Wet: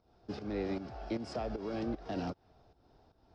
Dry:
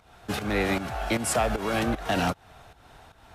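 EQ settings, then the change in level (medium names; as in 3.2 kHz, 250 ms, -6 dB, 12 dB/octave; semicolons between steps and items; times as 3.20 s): FFT filter 150 Hz 0 dB, 350 Hz +6 dB, 1.9 kHz -14 dB; dynamic bell 2.1 kHz, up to +4 dB, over -52 dBFS, Q 1; four-pole ladder low-pass 5.4 kHz, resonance 75%; 0.0 dB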